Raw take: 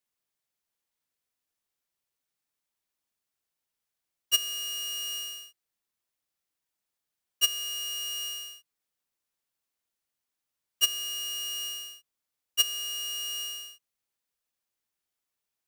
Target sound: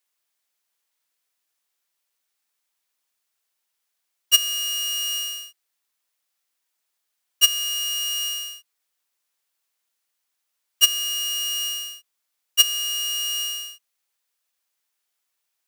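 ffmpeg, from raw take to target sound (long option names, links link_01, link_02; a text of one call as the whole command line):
ffmpeg -i in.wav -af "highpass=frequency=810:poles=1,volume=8.5dB" out.wav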